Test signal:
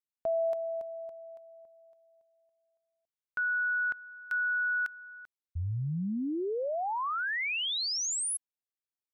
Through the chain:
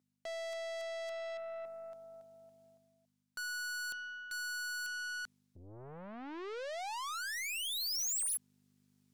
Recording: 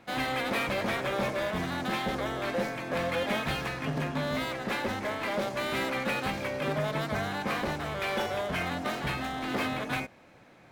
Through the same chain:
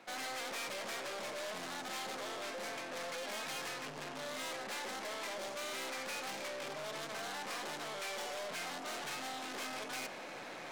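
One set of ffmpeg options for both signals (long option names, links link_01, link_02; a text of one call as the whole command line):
ffmpeg -i in.wav -af "aeval=exprs='val(0)+0.000501*(sin(2*PI*50*n/s)+sin(2*PI*2*50*n/s)/2+sin(2*PI*3*50*n/s)/3+sin(2*PI*4*50*n/s)/4+sin(2*PI*5*50*n/s)/5)':channel_layout=same,highshelf=frequency=11000:gain=-11,acontrast=23,highpass=frequency=120:width=0.5412,highpass=frequency=120:width=1.3066,areverse,acompressor=threshold=-37dB:ratio=8:attack=23:release=811:knee=1:detection=rms,areverse,aeval=exprs='(tanh(316*val(0)+0.55)-tanh(0.55))/316':channel_layout=same,bass=frequency=250:gain=-14,treble=frequency=4000:gain=6,volume=10dB" out.wav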